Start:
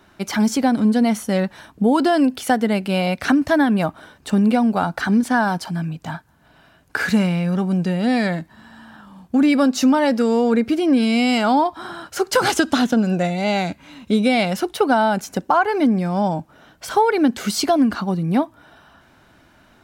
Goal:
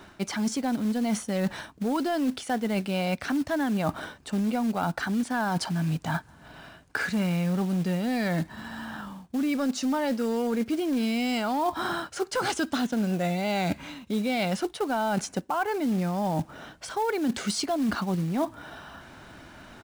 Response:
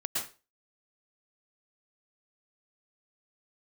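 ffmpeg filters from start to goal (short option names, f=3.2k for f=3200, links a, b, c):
-af "acontrast=35,aresample=22050,aresample=44100,acrusher=bits=5:mode=log:mix=0:aa=0.000001,areverse,acompressor=threshold=-25dB:ratio=8,areverse"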